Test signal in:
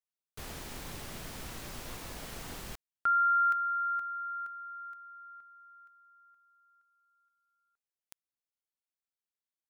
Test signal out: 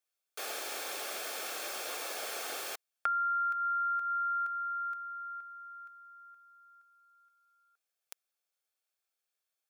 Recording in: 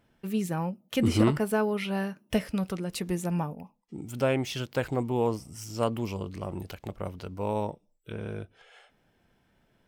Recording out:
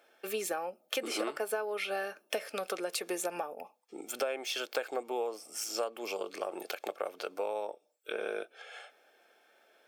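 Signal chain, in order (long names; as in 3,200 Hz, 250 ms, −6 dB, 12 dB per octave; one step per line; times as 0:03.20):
high-pass filter 440 Hz 24 dB per octave
downward compressor 10 to 1, threshold −38 dBFS
notch comb filter 970 Hz
level +8 dB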